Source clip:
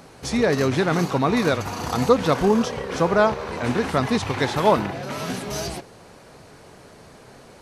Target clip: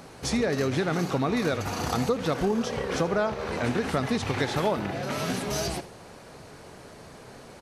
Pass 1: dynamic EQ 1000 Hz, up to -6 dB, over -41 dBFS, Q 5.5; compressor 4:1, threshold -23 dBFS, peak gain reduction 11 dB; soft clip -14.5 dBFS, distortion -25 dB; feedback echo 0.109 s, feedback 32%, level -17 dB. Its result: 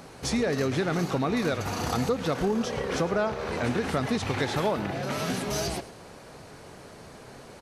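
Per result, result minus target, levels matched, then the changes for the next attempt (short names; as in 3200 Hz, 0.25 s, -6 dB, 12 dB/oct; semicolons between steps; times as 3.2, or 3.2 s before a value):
soft clip: distortion +19 dB; echo 32 ms late
change: soft clip -4 dBFS, distortion -44 dB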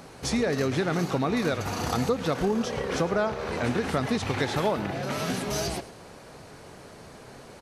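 echo 32 ms late
change: feedback echo 77 ms, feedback 32%, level -17 dB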